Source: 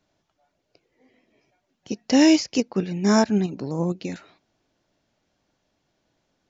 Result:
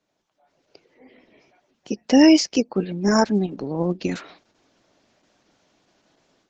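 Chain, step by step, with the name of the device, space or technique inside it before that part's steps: noise-suppressed video call (HPF 180 Hz 12 dB/oct; spectral gate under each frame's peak -30 dB strong; AGC gain up to 13.5 dB; gain -2.5 dB; Opus 12 kbps 48000 Hz)

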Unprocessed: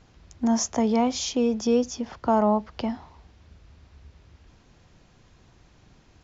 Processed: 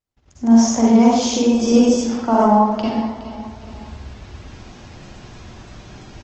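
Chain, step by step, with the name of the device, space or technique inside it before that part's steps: 2.12–2.9 HPF 96 Hz 12 dB/oct; feedback echo 0.416 s, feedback 27%, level -17 dB; speakerphone in a meeting room (reverb RT60 0.85 s, pre-delay 39 ms, DRR -4.5 dB; AGC gain up to 13 dB; gate -46 dBFS, range -35 dB; gain -1 dB; Opus 16 kbps 48000 Hz)

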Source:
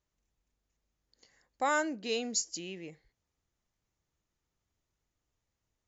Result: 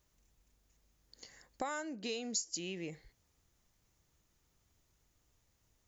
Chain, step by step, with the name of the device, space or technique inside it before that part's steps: ASMR close-microphone chain (low shelf 180 Hz +3 dB; compressor 6:1, threshold -45 dBFS, peak gain reduction 19 dB; high shelf 6100 Hz +7 dB); gain +7 dB

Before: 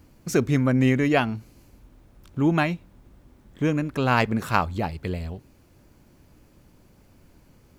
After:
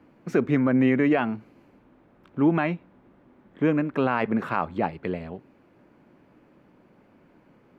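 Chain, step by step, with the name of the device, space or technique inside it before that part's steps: DJ mixer with the lows and highs turned down (three-band isolator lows -22 dB, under 160 Hz, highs -24 dB, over 2700 Hz; limiter -14.5 dBFS, peak gain reduction 9.5 dB); gain +3 dB

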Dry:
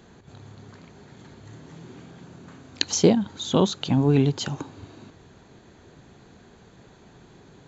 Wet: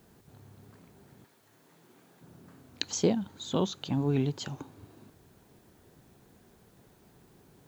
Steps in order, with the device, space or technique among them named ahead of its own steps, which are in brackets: plain cassette with noise reduction switched in (mismatched tape noise reduction decoder only; wow and flutter; white noise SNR 33 dB); 1.24–2.21 HPF 1100 Hz -> 500 Hz 6 dB/oct; gain -8.5 dB

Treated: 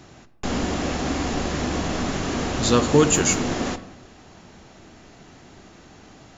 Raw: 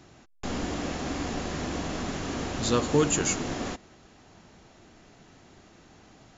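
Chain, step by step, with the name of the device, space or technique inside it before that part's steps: saturated reverb return (on a send at -10.5 dB: reverb RT60 0.90 s, pre-delay 9 ms + soft clip -23.5 dBFS, distortion -11 dB); on the sum: gain +6.5 dB

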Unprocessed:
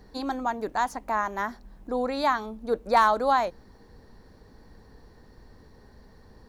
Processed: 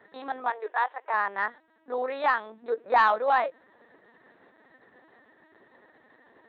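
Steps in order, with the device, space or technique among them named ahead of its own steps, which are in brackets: talking toy (LPC vocoder at 8 kHz pitch kept; HPF 400 Hz 12 dB/oct; bell 1800 Hz +7 dB 0.45 oct; soft clip -10 dBFS, distortion -21 dB); 0.5–1.14 elliptic band-pass 410–3700 Hz, stop band 40 dB

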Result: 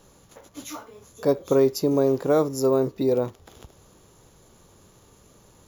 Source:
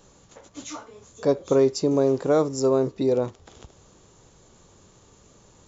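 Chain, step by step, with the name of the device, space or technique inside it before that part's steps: crushed at another speed (playback speed 0.5×; sample-and-hold 5×; playback speed 2×)

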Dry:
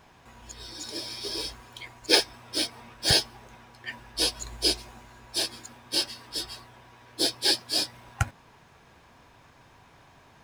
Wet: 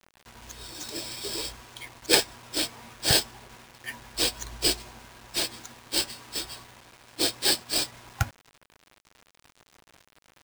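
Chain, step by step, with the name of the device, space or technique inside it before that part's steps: early 8-bit sampler (sample-rate reducer 13000 Hz, jitter 0%; bit-crush 8-bit)

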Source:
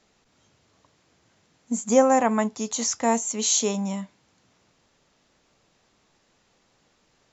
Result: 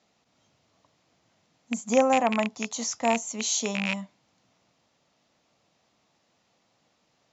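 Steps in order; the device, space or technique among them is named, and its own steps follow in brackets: car door speaker with a rattle (rattling part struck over -29 dBFS, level -11 dBFS; speaker cabinet 94–7000 Hz, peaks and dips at 400 Hz -5 dB, 680 Hz +4 dB, 1600 Hz -4 dB); gain -3.5 dB

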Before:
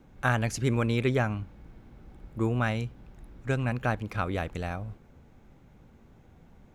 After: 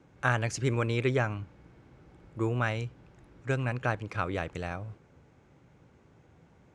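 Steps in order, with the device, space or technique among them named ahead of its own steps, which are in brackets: car door speaker (speaker cabinet 96–8700 Hz, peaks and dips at 220 Hz -9 dB, 740 Hz -3 dB, 3700 Hz -3 dB)

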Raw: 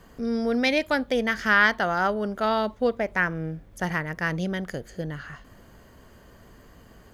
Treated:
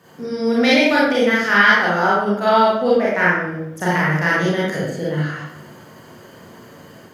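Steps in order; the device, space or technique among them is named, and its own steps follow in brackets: far laptop microphone (reverb RT60 0.80 s, pre-delay 29 ms, DRR -7.5 dB; HPF 130 Hz 24 dB/oct; AGC gain up to 3.5 dB)

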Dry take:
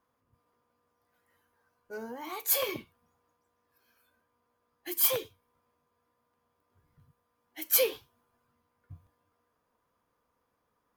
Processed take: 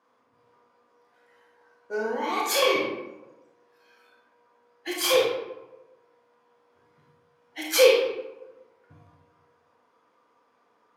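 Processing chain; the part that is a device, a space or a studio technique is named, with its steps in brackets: supermarket ceiling speaker (BPF 280–5800 Hz; reverb RT60 1.0 s, pre-delay 26 ms, DRR -2.5 dB); gain +8 dB

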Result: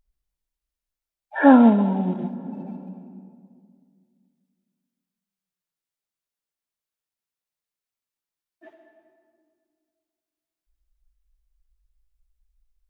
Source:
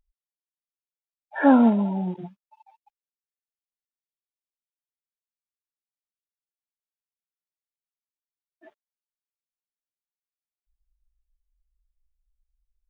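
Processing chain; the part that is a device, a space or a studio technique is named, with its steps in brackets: compressed reverb return (on a send at -3.5 dB: reverb RT60 2.0 s, pre-delay 50 ms + compressor 4:1, threshold -29 dBFS, peak gain reduction 13.5 dB); on the sum: gain +3.5 dB

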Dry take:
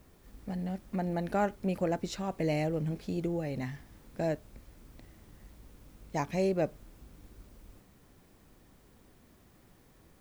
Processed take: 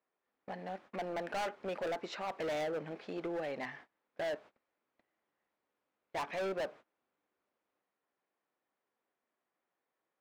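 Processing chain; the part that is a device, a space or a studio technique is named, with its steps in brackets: walkie-talkie (BPF 590–2400 Hz; hard clip -39 dBFS, distortion -5 dB; gate -59 dBFS, range -24 dB); gain +5.5 dB

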